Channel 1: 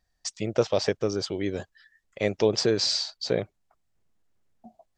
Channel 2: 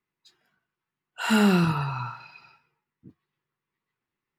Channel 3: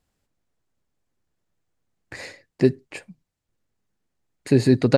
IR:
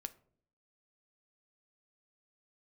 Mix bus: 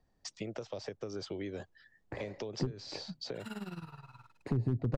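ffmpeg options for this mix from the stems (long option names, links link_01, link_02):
-filter_complex "[0:a]highshelf=frequency=5600:gain=-7.5,acrossover=split=160|630|5400[link_01][link_02][link_03][link_04];[link_01]acompressor=threshold=-44dB:ratio=4[link_05];[link_02]acompressor=threshold=-29dB:ratio=4[link_06];[link_03]acompressor=threshold=-38dB:ratio=4[link_07];[link_04]acompressor=threshold=-46dB:ratio=4[link_08];[link_05][link_06][link_07][link_08]amix=inputs=4:normalize=0,alimiter=limit=-21dB:level=0:latency=1:release=221,volume=-4dB,asplit=2[link_09][link_10];[1:a]tremolo=f=19:d=0.81,aeval=exprs='sgn(val(0))*max(abs(val(0))-0.00299,0)':channel_layout=same,adelay=2150,volume=-18.5dB[link_11];[2:a]firequalizer=gain_entry='entry(910,0);entry(1500,-12);entry(7900,-28)':delay=0.05:min_phase=1,acompressor=threshold=-20dB:ratio=2,aeval=exprs='0.251*(abs(mod(val(0)/0.251+3,4)-2)-1)':channel_layout=same,volume=1dB[link_12];[link_10]apad=whole_len=223635[link_13];[link_12][link_13]sidechaincompress=threshold=-35dB:ratio=8:attack=16:release=107[link_14];[link_09][link_11][link_14]amix=inputs=3:normalize=0,acrossover=split=120[link_15][link_16];[link_16]acompressor=threshold=-36dB:ratio=6[link_17];[link_15][link_17]amix=inputs=2:normalize=0"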